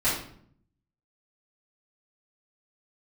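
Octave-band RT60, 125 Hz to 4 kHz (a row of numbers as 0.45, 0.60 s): 1.0, 0.90, 0.65, 0.55, 0.50, 0.45 s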